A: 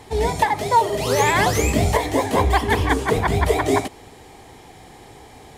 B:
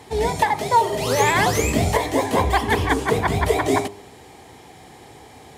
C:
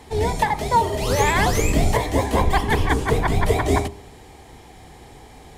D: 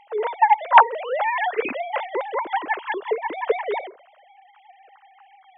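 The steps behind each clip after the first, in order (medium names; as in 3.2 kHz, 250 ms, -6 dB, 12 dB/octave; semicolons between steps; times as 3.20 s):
high-pass 72 Hz; de-hum 100.8 Hz, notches 13
octave divider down 2 oct, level +4 dB; short-mantissa float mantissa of 8-bit; trim -1.5 dB
formants replaced by sine waves; trim -2.5 dB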